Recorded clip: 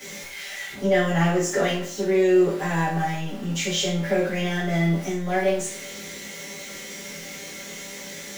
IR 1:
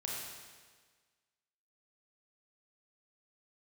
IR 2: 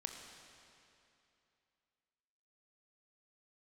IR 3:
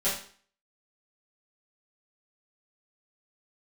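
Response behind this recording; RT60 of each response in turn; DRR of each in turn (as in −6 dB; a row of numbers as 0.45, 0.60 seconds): 3; 1.5, 2.8, 0.45 seconds; −4.0, 3.0, −12.0 decibels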